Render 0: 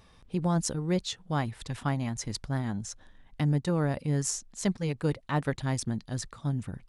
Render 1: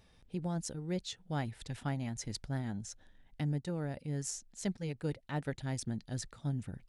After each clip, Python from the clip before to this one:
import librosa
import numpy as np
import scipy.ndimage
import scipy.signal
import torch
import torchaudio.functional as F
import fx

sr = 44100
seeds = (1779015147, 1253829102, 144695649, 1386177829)

y = fx.peak_eq(x, sr, hz=1100.0, db=-9.5, octaves=0.34)
y = fx.rider(y, sr, range_db=3, speed_s=0.5)
y = y * 10.0 ** (-7.5 / 20.0)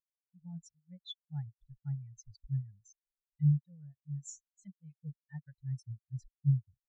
y = fx.tone_stack(x, sr, knobs='10-0-10')
y = fx.leveller(y, sr, passes=3)
y = fx.spectral_expand(y, sr, expansion=4.0)
y = y * 10.0 ** (5.0 / 20.0)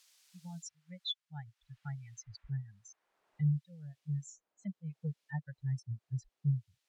y = fx.filter_sweep_bandpass(x, sr, from_hz=5000.0, to_hz=560.0, start_s=1.44, end_s=3.49, q=0.88)
y = fx.band_squash(y, sr, depth_pct=70)
y = y * 10.0 ** (14.5 / 20.0)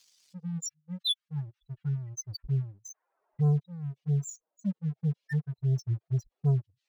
y = fx.spec_expand(x, sr, power=2.4)
y = fx.leveller(y, sr, passes=2)
y = y * 10.0 ** (4.0 / 20.0)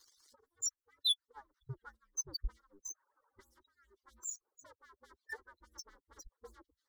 y = fx.hpss_only(x, sr, part='percussive')
y = fx.high_shelf(y, sr, hz=3000.0, db=-9.0)
y = fx.fixed_phaser(y, sr, hz=690.0, stages=6)
y = y * 10.0 ** (10.5 / 20.0)